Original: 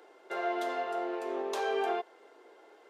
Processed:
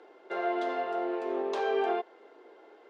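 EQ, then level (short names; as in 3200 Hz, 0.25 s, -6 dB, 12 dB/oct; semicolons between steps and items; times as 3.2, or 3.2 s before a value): BPF 140–4400 Hz; low shelf 400 Hz +7 dB; 0.0 dB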